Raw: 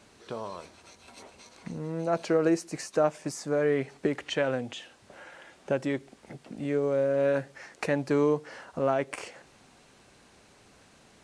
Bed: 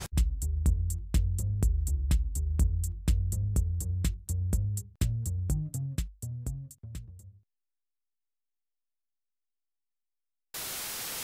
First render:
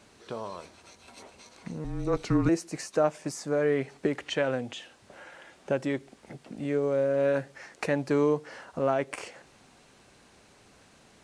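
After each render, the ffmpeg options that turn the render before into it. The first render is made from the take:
-filter_complex "[0:a]asettb=1/sr,asplit=3[a][b][c];[a]atrim=end=1.844[d];[b]atrim=start=1.84:end=2.49,asetpts=PTS-STARTPTS,afade=t=in:d=0.004:c=qsin,afade=t=out:st=0.646:d=0.004:c=qsin,afreqshift=-190[e];[c]atrim=start=2.486[f];[d][e]acrossfade=d=0.004:c1=hsin:c2=qsin[g];[g][f]acrossfade=d=0.004:c1=qsin:c2=hsin"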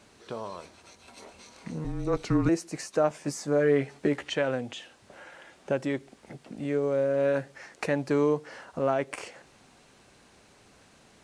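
-filter_complex "[0:a]asettb=1/sr,asplit=3[a][b][c];[a]atrim=end=1.204[d];[b]atrim=start=1.2:end=1.93,asetpts=PTS-STARTPTS,afade=t=in:d=0.004:c=qsin,afade=t=out:st=0.726:d=0.004:c=qsin,asplit=2[e][f];[f]adelay=25,volume=-4dB[g];[e][g]amix=inputs=2:normalize=0,atrim=end_sample=32193[h];[c]atrim=start=1.926[i];[d][h]acrossfade=d=0.004:c1=hsin:c2=qsin[j];[j][i]acrossfade=d=0.004:c1=qsin:c2=hsin,asettb=1/sr,asplit=3[k][l][m];[k]atrim=end=3.094[n];[l]atrim=start=3.09:end=4.29,asetpts=PTS-STARTPTS,afade=t=in:d=0.004:c=qsin,afade=t=out:st=1.196:d=0.004:c=qsin,asplit=2[o][p];[p]adelay=14,volume=-5dB[q];[o][q]amix=inputs=2:normalize=0,atrim=end_sample=52920[r];[m]atrim=start=4.286[s];[n][r]acrossfade=d=0.004:c1=hsin:c2=qsin[t];[t][s]acrossfade=d=0.004:c1=qsin:c2=hsin"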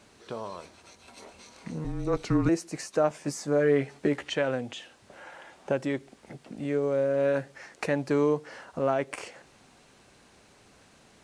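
-filter_complex "[0:a]asettb=1/sr,asplit=3[a][b][c];[a]atrim=end=5.234[d];[b]atrim=start=5.23:end=5.72,asetpts=PTS-STARTPTS,afade=t=in:d=0.004:c=qsin,afade=t=out:st=0.486:d=0.004:c=qsin,equalizer=f=870:t=o:w=0.95:g=6[e];[c]atrim=start=5.716[f];[d][e]acrossfade=d=0.004:c1=hsin:c2=qsin[g];[g][f]acrossfade=d=0.004:c1=qsin:c2=hsin"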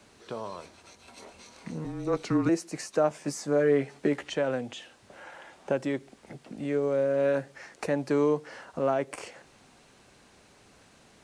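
-filter_complex "[0:a]acrossover=split=130|1300|4400[a][b][c][d];[a]acompressor=threshold=-51dB:ratio=6[e];[c]alimiter=level_in=7dB:limit=-24dB:level=0:latency=1:release=160,volume=-7dB[f];[e][b][f][d]amix=inputs=4:normalize=0"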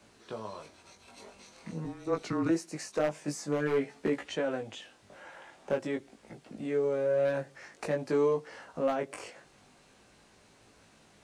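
-af "aeval=exprs='0.15*(abs(mod(val(0)/0.15+3,4)-2)-1)':c=same,flanger=delay=18:depth=2.3:speed=0.47"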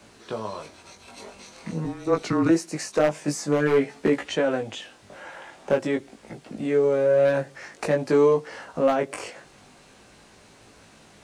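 -af "volume=8.5dB"

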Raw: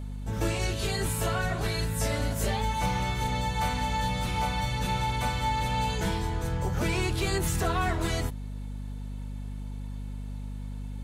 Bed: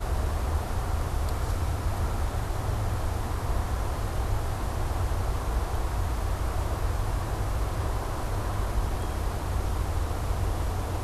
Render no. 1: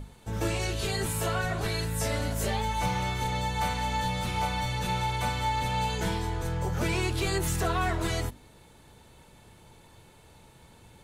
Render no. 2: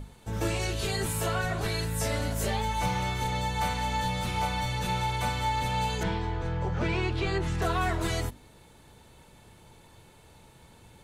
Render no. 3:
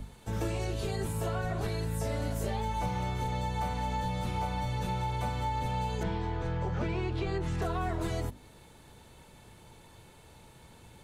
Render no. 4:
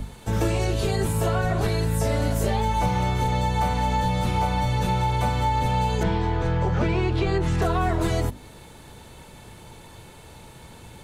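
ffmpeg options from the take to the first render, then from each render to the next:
-af "bandreject=f=50:t=h:w=6,bandreject=f=100:t=h:w=6,bandreject=f=150:t=h:w=6,bandreject=f=200:t=h:w=6,bandreject=f=250:t=h:w=6,bandreject=f=300:t=h:w=6"
-filter_complex "[0:a]asettb=1/sr,asplit=3[a][b][c];[a]atrim=end=6.034[d];[b]atrim=start=6.03:end=7.62,asetpts=PTS-STARTPTS,afade=t=in:d=0.004:c=qsin,afade=t=out:st=1.586:d=0.004:c=qsin,lowpass=3.5k[e];[c]atrim=start=7.616[f];[d][e]acrossfade=d=0.004:c1=hsin:c2=qsin[g];[g][f]acrossfade=d=0.004:c1=qsin:c2=hsin"
-filter_complex "[0:a]acrossover=split=97|990[a][b][c];[a]acompressor=threshold=-35dB:ratio=4[d];[b]acompressor=threshold=-31dB:ratio=4[e];[c]acompressor=threshold=-45dB:ratio=4[f];[d][e][f]amix=inputs=3:normalize=0"
-af "volume=9.5dB"

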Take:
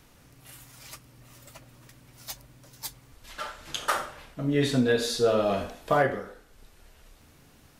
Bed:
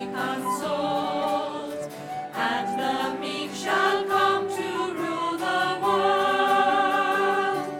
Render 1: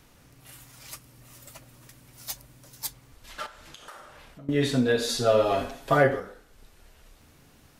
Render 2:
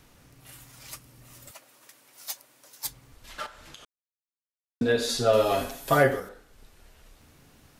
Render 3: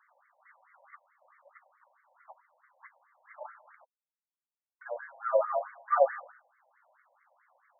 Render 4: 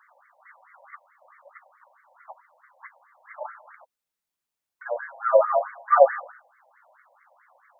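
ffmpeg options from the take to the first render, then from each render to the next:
-filter_complex "[0:a]asettb=1/sr,asplit=3[a][b][c];[a]atrim=end=0.884[d];[b]atrim=start=0.88:end=2.87,asetpts=PTS-STARTPTS,afade=t=in:d=0.004:c=qsin,afade=t=out:st=1.986:d=0.004:c=qsin,equalizer=f=12k:t=o:w=1.5:g=5.5[e];[c]atrim=start=2.866[f];[d][e]acrossfade=d=0.004:c1=hsin:c2=qsin[g];[g][f]acrossfade=d=0.004:c1=qsin:c2=hsin,asettb=1/sr,asplit=3[h][i][j];[h]atrim=end=3.464[k];[i]atrim=start=3.46:end=4.49,asetpts=PTS-STARTPTS,afade=t=in:d=0.004:c=qsin,afade=t=out:st=1.026:d=0.004:c=qsin,acompressor=threshold=-45dB:ratio=4:attack=3.2:release=140:knee=1:detection=peak[l];[j]atrim=start=4.486[m];[k][l]acrossfade=d=0.004:c1=hsin:c2=qsin[n];[n][m]acrossfade=d=0.004:c1=qsin:c2=hsin,asettb=1/sr,asplit=3[o][p][q];[o]atrim=end=5.084[r];[p]atrim=start=5.08:end=6.2,asetpts=PTS-STARTPTS,afade=t=in:d=0.004:c=qsin,afade=t=out:st=1.116:d=0.004:c=qsin,aecho=1:1:7.4:0.92,atrim=end_sample=49392[s];[q]atrim=start=6.196[t];[r][s]acrossfade=d=0.004:c1=hsin:c2=qsin[u];[u][t]acrossfade=d=0.004:c1=qsin:c2=hsin"
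-filter_complex "[0:a]asettb=1/sr,asplit=3[a][b][c];[a]atrim=end=1.514[d];[b]atrim=start=1.51:end=2.85,asetpts=PTS-STARTPTS,afade=t=in:d=0.004:c=qsin,afade=t=out:st=1.336:d=0.004:c=qsin,highpass=470[e];[c]atrim=start=2.846[f];[d][e]acrossfade=d=0.004:c1=hsin:c2=qsin[g];[g][f]acrossfade=d=0.004:c1=qsin:c2=hsin,asettb=1/sr,asplit=3[h][i][j];[h]atrim=end=5.334[k];[i]atrim=start=5.33:end=6.29,asetpts=PTS-STARTPTS,afade=t=in:d=0.004:c=qsin,afade=t=out:st=0.956:d=0.004:c=qsin,aemphasis=mode=production:type=50fm[l];[j]atrim=start=6.286[m];[k][l]acrossfade=d=0.004:c1=hsin:c2=qsin[n];[n][m]acrossfade=d=0.004:c1=qsin:c2=hsin,asplit=3[o][p][q];[o]atrim=end=3.85,asetpts=PTS-STARTPTS,afade=t=out:st=3.846:d=0.004:c=hsin[r];[p]atrim=start=3.85:end=4.81,asetpts=PTS-STARTPTS,volume=0[s];[q]atrim=start=4.81,asetpts=PTS-STARTPTS,afade=t=in:d=0.004:c=hsin[t];[r][s][t]concat=n=3:v=0:a=1"
-af "afftfilt=real='re*between(b*sr/1024,690*pow(1600/690,0.5+0.5*sin(2*PI*4.6*pts/sr))/1.41,690*pow(1600/690,0.5+0.5*sin(2*PI*4.6*pts/sr))*1.41)':imag='im*between(b*sr/1024,690*pow(1600/690,0.5+0.5*sin(2*PI*4.6*pts/sr))/1.41,690*pow(1600/690,0.5+0.5*sin(2*PI*4.6*pts/sr))*1.41)':win_size=1024:overlap=0.75"
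-af "volume=8.5dB"

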